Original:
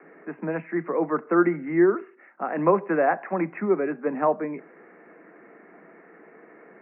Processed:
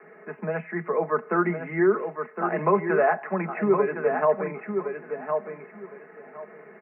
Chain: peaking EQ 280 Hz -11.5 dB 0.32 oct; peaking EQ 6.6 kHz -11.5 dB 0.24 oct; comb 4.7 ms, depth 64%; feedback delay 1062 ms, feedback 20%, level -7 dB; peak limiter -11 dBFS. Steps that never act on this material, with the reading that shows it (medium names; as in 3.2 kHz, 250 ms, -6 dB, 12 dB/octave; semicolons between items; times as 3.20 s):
peaking EQ 6.6 kHz: input has nothing above 2.3 kHz